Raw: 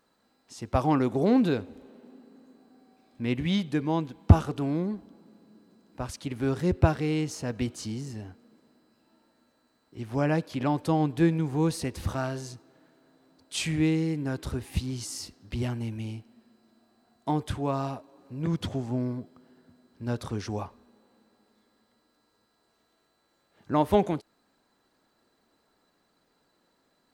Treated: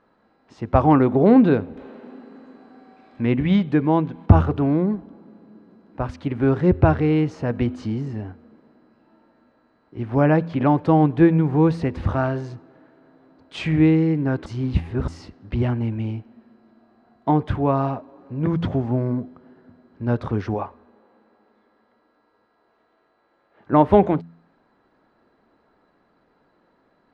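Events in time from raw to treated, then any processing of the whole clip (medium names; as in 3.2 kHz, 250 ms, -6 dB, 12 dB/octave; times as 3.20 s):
1.77–4.26 s: tape noise reduction on one side only encoder only
14.46–15.08 s: reverse
20.54–23.73 s: tone controls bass -9 dB, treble -3 dB
whole clip: low-pass 1.9 kHz 12 dB/octave; de-hum 83.81 Hz, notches 3; loudness maximiser +10 dB; trim -1 dB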